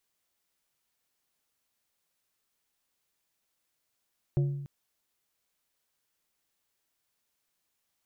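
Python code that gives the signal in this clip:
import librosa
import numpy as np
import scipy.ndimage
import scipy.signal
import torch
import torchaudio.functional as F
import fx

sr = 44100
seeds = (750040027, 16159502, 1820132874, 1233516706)

y = fx.strike_glass(sr, length_s=0.29, level_db=-21, body='plate', hz=141.0, decay_s=0.97, tilt_db=9.5, modes=4)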